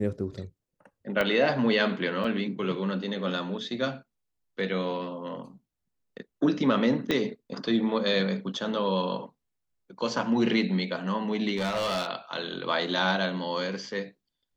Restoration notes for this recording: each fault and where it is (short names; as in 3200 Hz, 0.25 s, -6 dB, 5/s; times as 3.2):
1.21 pop -13 dBFS
2.24 gap 4.3 ms
7.11 pop -13 dBFS
11.56–12.08 clipped -24.5 dBFS